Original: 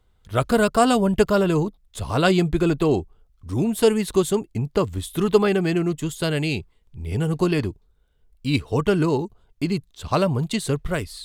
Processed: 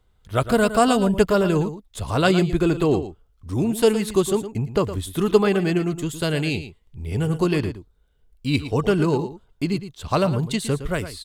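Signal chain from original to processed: delay 113 ms -12 dB

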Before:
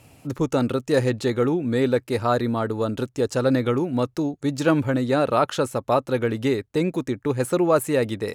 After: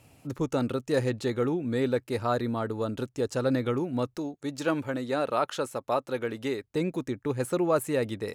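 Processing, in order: 4.18–6.64 s: bass shelf 180 Hz -11.5 dB; trim -6 dB

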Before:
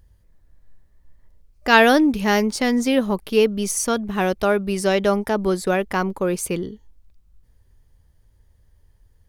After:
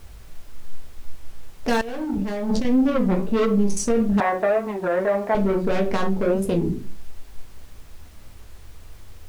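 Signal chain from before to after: local Wiener filter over 41 samples; low-pass that closes with the level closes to 2 kHz, closed at -15.5 dBFS; saturation -20.5 dBFS, distortion -7 dB; reverberation RT60 0.35 s, pre-delay 4 ms, DRR -0.5 dB; 1.81–2.65 s: compressor with a negative ratio -29 dBFS, ratio -1; peak limiter -16.5 dBFS, peak gain reduction 9.5 dB; 4.20–5.35 s: cabinet simulation 380–3000 Hz, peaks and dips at 440 Hz -4 dB, 700 Hz +8 dB, 1 kHz +7 dB, 1.9 kHz +8 dB, 2.9 kHz -8 dB; added noise pink -56 dBFS; warped record 33 1/3 rpm, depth 160 cents; trim +4 dB

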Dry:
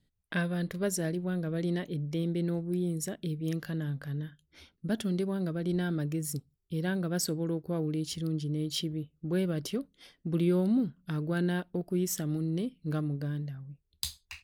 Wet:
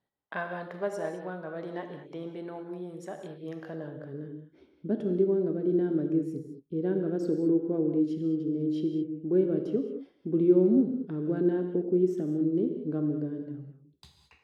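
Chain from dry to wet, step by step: band-pass sweep 860 Hz -> 350 Hz, 3.47–4.27 s; gated-style reverb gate 240 ms flat, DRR 4.5 dB; trim +8.5 dB

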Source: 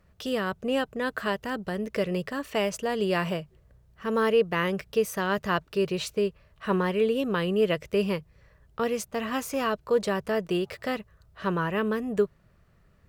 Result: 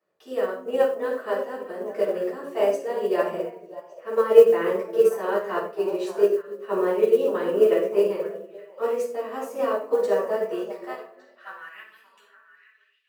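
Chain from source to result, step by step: high-pass sweep 460 Hz -> 2.9 kHz, 10.37–12.03 s; repeats whose band climbs or falls 290 ms, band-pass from 260 Hz, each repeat 1.4 oct, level -5 dB; simulated room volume 640 m³, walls furnished, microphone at 9.6 m; modulation noise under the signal 33 dB; dynamic bell 3.6 kHz, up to -7 dB, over -39 dBFS, Q 0.98; upward expansion 1.5:1, over -25 dBFS; trim -8 dB

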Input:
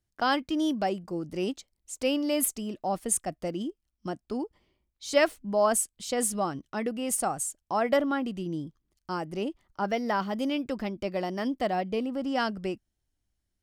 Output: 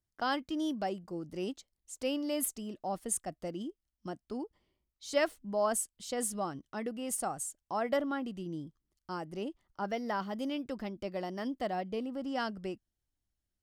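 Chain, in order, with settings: peaking EQ 2.4 kHz -4 dB 0.21 oct; trim -6.5 dB

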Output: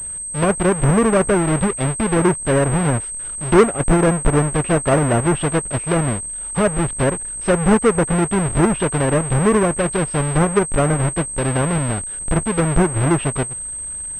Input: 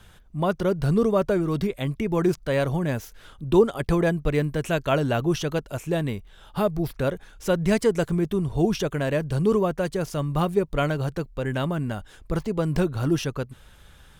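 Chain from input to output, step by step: square wave that keeps the level; low-pass that closes with the level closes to 1.9 kHz, closed at -15.5 dBFS; class-D stage that switches slowly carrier 8.3 kHz; trim +2.5 dB

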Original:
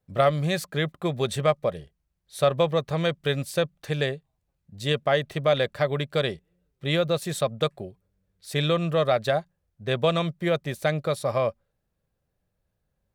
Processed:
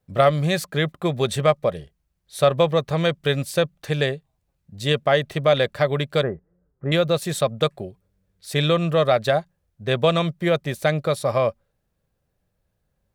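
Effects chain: 6.23–6.92 s: steep low-pass 1.6 kHz 36 dB/octave; trim +4 dB

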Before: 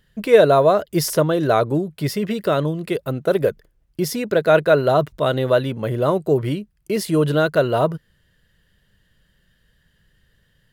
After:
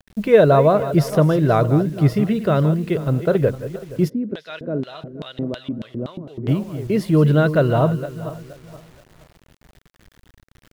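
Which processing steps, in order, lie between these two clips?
backward echo that repeats 237 ms, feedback 51%, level -12 dB; tone controls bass +9 dB, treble -11 dB; bit crusher 8-bit; 4.08–6.47 s: LFO band-pass square 1.6 Hz -> 5.4 Hz 260–3500 Hz; trim -1 dB

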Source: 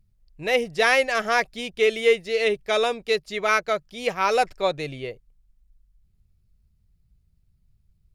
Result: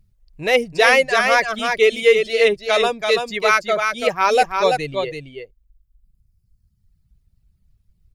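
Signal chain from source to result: reverb removal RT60 1.8 s; on a send: delay 334 ms -5 dB; on the sum: trim +5.5 dB

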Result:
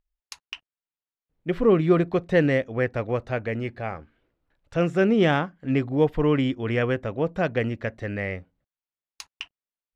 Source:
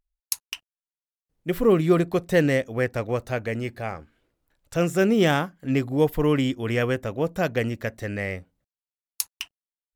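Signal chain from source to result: low-pass 3.3 kHz 12 dB/octave

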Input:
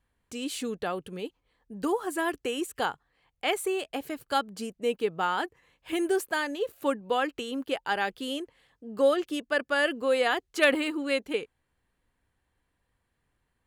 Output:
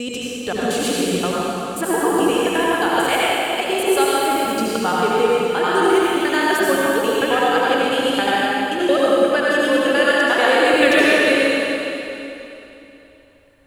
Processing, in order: slices played last to first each 88 ms, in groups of 5; in parallel at +3 dB: compression, threshold -32 dBFS, peak gain reduction 14 dB; on the sum: reverberation RT60 3.1 s, pre-delay 65 ms, DRR -6.5 dB; trim +1.5 dB

